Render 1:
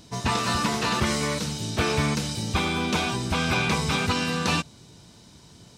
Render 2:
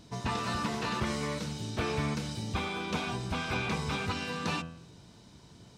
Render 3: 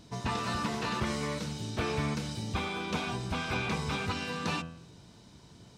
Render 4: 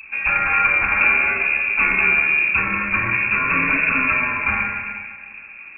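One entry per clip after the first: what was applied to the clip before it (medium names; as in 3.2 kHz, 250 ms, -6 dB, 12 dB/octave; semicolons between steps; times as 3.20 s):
treble shelf 4.2 kHz -8 dB; de-hum 82.55 Hz, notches 39; in parallel at -0.5 dB: compression, threshold -36 dBFS, peak gain reduction 15 dB; on the sum: trim -8.5 dB
no audible change
vibrato 0.47 Hz 28 cents; reverberation RT60 2.0 s, pre-delay 5 ms, DRR -1.5 dB; frequency inversion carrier 2.6 kHz; trim +8.5 dB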